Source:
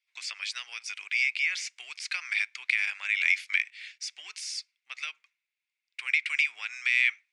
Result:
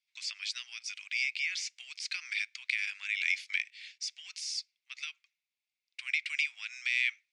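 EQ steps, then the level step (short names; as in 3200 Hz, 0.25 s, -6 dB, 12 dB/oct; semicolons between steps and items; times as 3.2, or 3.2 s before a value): band-pass 4800 Hz, Q 1; 0.0 dB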